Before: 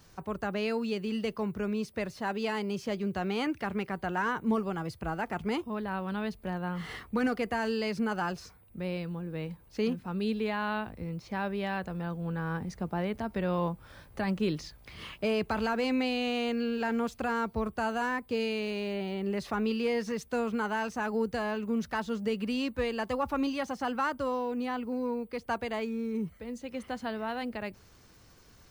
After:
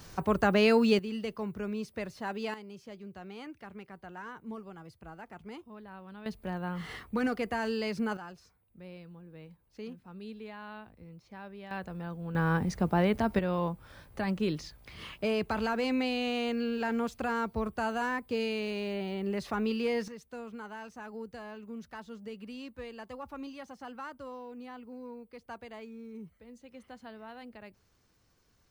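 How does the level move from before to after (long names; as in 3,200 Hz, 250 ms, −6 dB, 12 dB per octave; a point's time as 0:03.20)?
+8 dB
from 0:00.99 −3.5 dB
from 0:02.54 −13.5 dB
from 0:06.26 −1.5 dB
from 0:08.17 −13 dB
from 0:11.71 −4 dB
from 0:12.35 +6 dB
from 0:13.39 −1 dB
from 0:20.08 −12 dB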